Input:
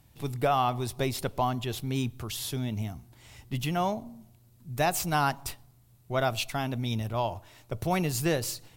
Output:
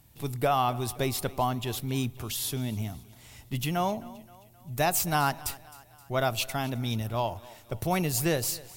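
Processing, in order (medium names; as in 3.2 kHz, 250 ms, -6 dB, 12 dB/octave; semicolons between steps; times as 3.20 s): treble shelf 8.8 kHz +8 dB; thinning echo 262 ms, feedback 52%, high-pass 210 Hz, level -20 dB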